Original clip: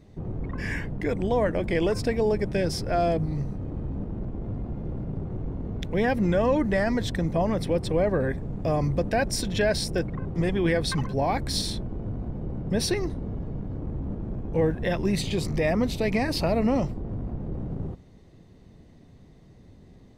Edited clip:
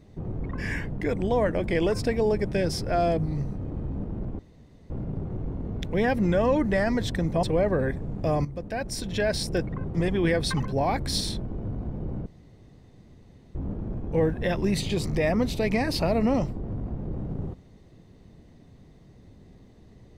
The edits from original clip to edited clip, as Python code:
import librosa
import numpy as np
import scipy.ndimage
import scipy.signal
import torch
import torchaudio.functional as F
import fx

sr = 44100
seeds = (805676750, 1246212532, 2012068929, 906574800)

y = fx.edit(x, sr, fx.room_tone_fill(start_s=4.39, length_s=0.51),
    fx.cut(start_s=7.43, length_s=0.41),
    fx.fade_in_from(start_s=8.86, length_s=1.1, floor_db=-12.5),
    fx.room_tone_fill(start_s=12.67, length_s=1.29), tone=tone)